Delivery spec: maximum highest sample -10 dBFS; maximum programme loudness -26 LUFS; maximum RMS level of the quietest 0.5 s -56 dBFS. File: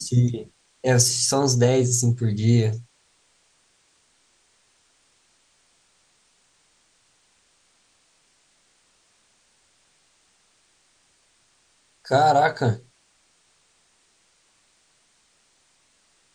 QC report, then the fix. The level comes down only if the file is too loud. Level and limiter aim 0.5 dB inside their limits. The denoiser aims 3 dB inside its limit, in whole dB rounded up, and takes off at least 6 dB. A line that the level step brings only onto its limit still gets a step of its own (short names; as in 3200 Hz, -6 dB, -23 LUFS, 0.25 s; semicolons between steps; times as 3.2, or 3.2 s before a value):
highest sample -4.0 dBFS: fail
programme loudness -20.5 LUFS: fail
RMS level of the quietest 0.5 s -64 dBFS: OK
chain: gain -6 dB; limiter -10.5 dBFS